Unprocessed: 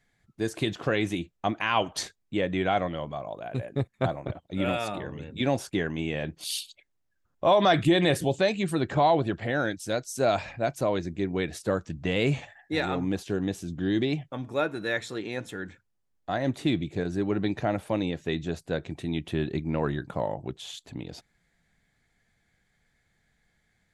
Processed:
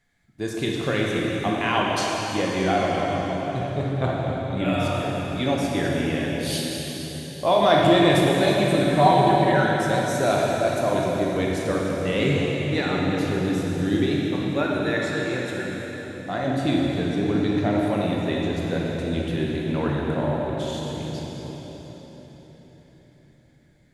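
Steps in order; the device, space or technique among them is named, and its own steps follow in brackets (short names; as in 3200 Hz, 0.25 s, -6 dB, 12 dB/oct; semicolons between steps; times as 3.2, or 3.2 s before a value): 8.94–9.64 comb 5.3 ms, depth 89%; cathedral (reverb RT60 4.6 s, pre-delay 17 ms, DRR -3 dB)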